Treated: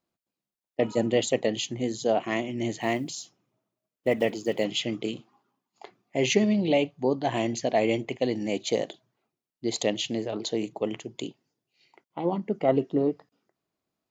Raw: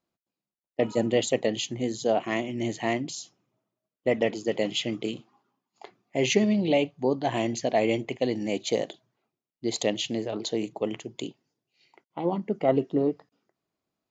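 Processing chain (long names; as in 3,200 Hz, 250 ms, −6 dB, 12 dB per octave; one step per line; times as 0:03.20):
0:02.81–0:04.65: one scale factor per block 7 bits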